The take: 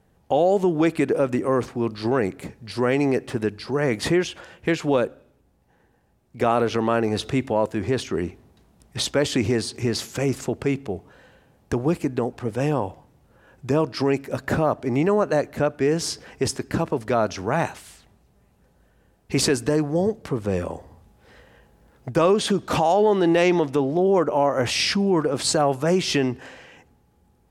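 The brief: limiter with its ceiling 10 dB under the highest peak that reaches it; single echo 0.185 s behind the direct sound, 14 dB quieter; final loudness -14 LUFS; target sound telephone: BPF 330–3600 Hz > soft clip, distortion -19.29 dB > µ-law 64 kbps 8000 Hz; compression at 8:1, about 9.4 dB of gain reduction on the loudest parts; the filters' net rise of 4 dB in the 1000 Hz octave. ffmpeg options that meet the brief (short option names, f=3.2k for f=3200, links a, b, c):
-af "equalizer=f=1k:t=o:g=5.5,acompressor=threshold=-22dB:ratio=8,alimiter=limit=-18dB:level=0:latency=1,highpass=330,lowpass=3.6k,aecho=1:1:185:0.2,asoftclip=threshold=-21.5dB,volume=19.5dB" -ar 8000 -c:a pcm_mulaw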